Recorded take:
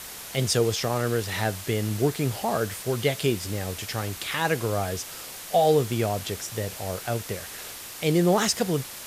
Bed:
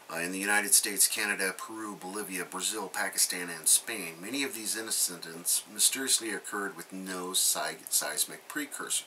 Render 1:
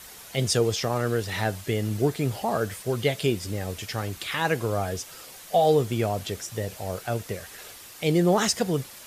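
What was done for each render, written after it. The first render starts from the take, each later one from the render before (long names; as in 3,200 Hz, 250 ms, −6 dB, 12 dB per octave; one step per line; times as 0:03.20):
broadband denoise 7 dB, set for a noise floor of −40 dBFS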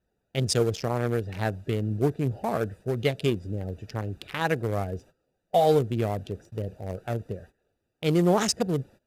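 adaptive Wiener filter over 41 samples
noise gate −47 dBFS, range −20 dB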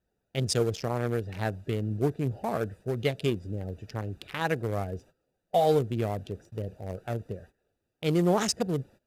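level −2.5 dB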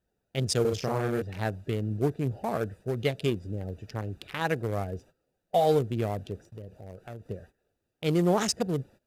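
0:00.61–0:01.22: double-tracking delay 39 ms −3 dB
0:06.43–0:07.26: downward compressor 2 to 1, threshold −44 dBFS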